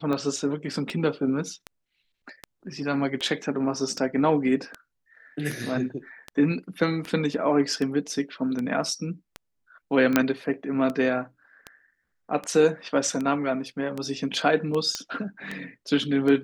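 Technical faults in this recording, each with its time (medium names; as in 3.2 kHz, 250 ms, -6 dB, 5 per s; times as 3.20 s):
tick 78 rpm -18 dBFS
10.16 s: pop -4 dBFS
14.95 s: pop -14 dBFS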